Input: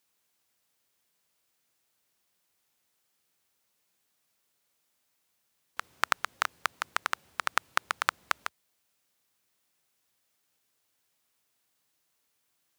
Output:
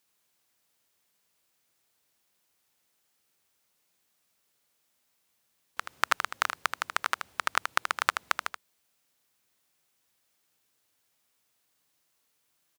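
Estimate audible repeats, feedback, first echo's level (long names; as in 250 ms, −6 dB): 1, repeats not evenly spaced, −7.5 dB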